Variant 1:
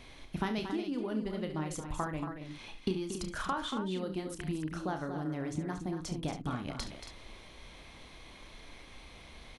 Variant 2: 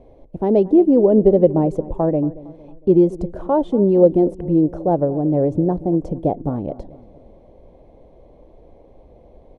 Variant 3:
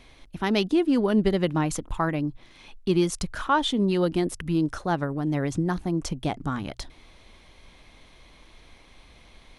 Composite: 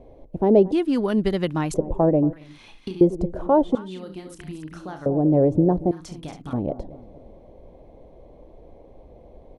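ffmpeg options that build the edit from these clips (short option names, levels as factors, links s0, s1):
-filter_complex "[0:a]asplit=3[s0][s1][s2];[1:a]asplit=5[s3][s4][s5][s6][s7];[s3]atrim=end=0.722[s8];[2:a]atrim=start=0.718:end=1.742[s9];[s4]atrim=start=1.738:end=2.332[s10];[s0]atrim=start=2.328:end=3.012[s11];[s5]atrim=start=3.008:end=3.752[s12];[s1]atrim=start=3.748:end=5.062[s13];[s6]atrim=start=5.058:end=5.912[s14];[s2]atrim=start=5.908:end=6.532[s15];[s7]atrim=start=6.528[s16];[s8][s9]acrossfade=d=0.004:c1=hsin:c2=hsin[s17];[s17][s10]acrossfade=d=0.004:c1=hsin:c2=hsin[s18];[s18][s11]acrossfade=d=0.004:c1=hsin:c2=hsin[s19];[s19][s12]acrossfade=d=0.004:c1=hsin:c2=hsin[s20];[s20][s13]acrossfade=d=0.004:c1=hsin:c2=hsin[s21];[s21][s14]acrossfade=d=0.004:c1=hsin:c2=hsin[s22];[s22][s15]acrossfade=d=0.004:c1=hsin:c2=hsin[s23];[s23][s16]acrossfade=d=0.004:c1=hsin:c2=hsin"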